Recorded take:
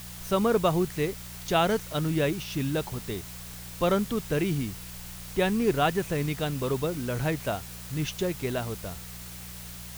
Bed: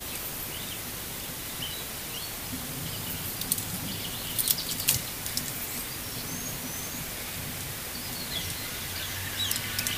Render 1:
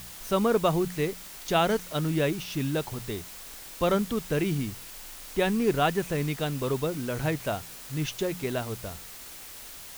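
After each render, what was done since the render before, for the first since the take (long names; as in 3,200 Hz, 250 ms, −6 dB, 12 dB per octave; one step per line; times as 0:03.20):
hum removal 60 Hz, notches 3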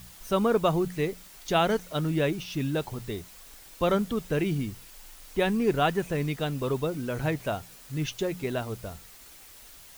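broadband denoise 7 dB, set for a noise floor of −44 dBFS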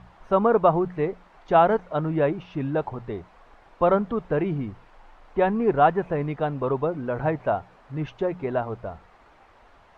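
low-pass filter 1,700 Hz 12 dB per octave
parametric band 840 Hz +9.5 dB 1.6 octaves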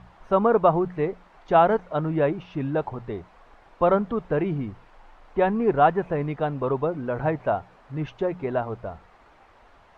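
no processing that can be heard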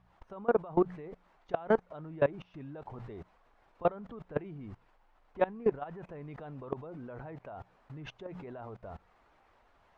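brickwall limiter −16 dBFS, peak gain reduction 10 dB
output level in coarse steps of 22 dB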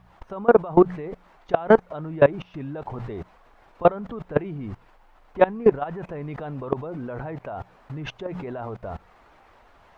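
level +11.5 dB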